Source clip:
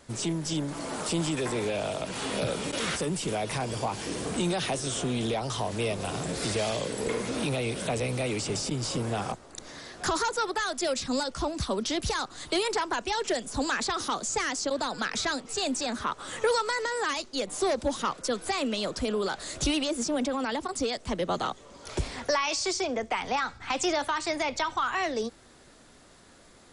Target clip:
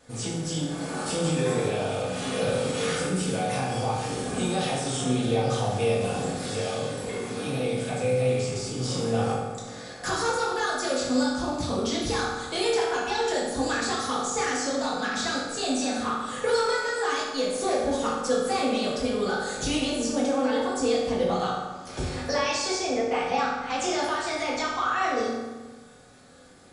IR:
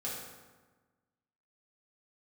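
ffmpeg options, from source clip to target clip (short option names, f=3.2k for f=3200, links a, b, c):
-filter_complex "[0:a]asettb=1/sr,asplit=3[a][b][c];[a]atrim=end=6.314[d];[b]atrim=start=6.31:end=8.77,asetpts=PTS-STARTPTS,afade=t=in:d=0.004:c=qsin,afade=t=out:st=2.456:d=0.004:c=qsin,flanger=delay=0.9:depth=9.4:regen=3:speed=1.4:shape=sinusoidal[e];[c]atrim=start=8.766[f];[d][e]acrossfade=d=0.004:c1=hsin:c2=qsin[g];[g][f]acrossfade=d=0.004:c1=qsin:c2=hsin[h];[1:a]atrim=start_sample=2205[i];[h][i]afir=irnorm=-1:irlink=0"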